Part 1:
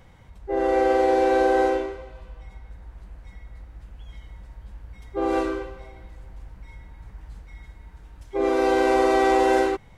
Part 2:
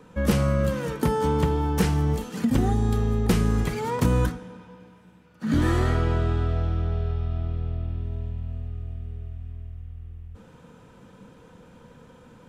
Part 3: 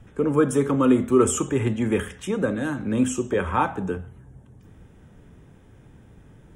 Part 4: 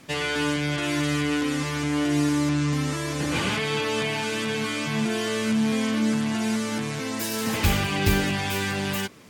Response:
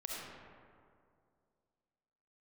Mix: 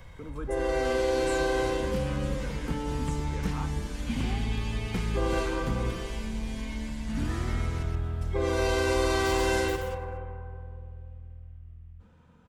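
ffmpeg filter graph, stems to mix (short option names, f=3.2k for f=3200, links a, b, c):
-filter_complex "[0:a]aecho=1:1:1.9:0.48,volume=0dB,asplit=2[a][b];[b]volume=-6dB[c];[1:a]lowpass=f=3.7k:p=1,adelay=1650,volume=-11dB,asplit=2[d][e];[e]volume=-8.5dB[f];[2:a]volume=-17.5dB[g];[3:a]equalizer=f=1.3k:t=o:w=0.3:g=-13.5,adelay=750,volume=-14dB,asplit=3[h][i][j];[h]atrim=end=7.83,asetpts=PTS-STARTPTS,afade=t=out:st=7.826:d=0.004:c=hsin[k];[i]atrim=start=7.83:end=9.15,asetpts=PTS-STARTPTS,volume=0[l];[j]atrim=start=9.15,asetpts=PTS-STARTPTS,afade=t=in:d=0.004:c=hsin[m];[k][l][m]concat=n=3:v=0:a=1,asplit=2[n][o];[o]volume=-4dB[p];[4:a]atrim=start_sample=2205[q];[c][f]amix=inputs=2:normalize=0[r];[r][q]afir=irnorm=-1:irlink=0[s];[p]aecho=0:1:126:1[t];[a][d][g][n][s][t]amix=inputs=6:normalize=0,acrossover=split=260|3000[u][v][w];[v]acompressor=threshold=-30dB:ratio=2[x];[u][x][w]amix=inputs=3:normalize=0,equalizer=f=440:t=o:w=1.1:g=-5"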